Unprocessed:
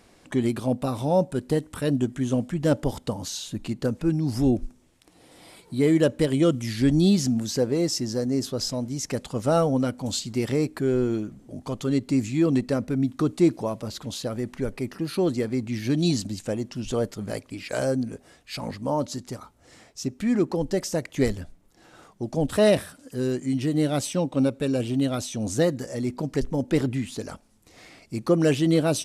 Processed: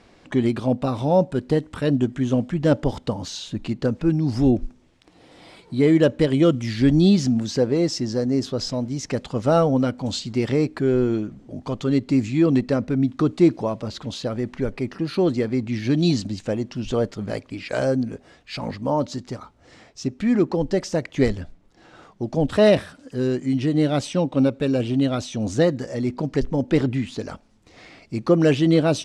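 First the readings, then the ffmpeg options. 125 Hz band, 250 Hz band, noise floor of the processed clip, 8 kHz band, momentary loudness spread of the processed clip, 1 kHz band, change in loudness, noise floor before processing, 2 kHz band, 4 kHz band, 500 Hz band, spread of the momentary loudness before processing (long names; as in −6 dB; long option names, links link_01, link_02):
+3.5 dB, +3.5 dB, −54 dBFS, −4.0 dB, 13 LU, +3.5 dB, +3.5 dB, −57 dBFS, +3.5 dB, +1.5 dB, +3.5 dB, 12 LU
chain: -af "lowpass=4900,volume=3.5dB"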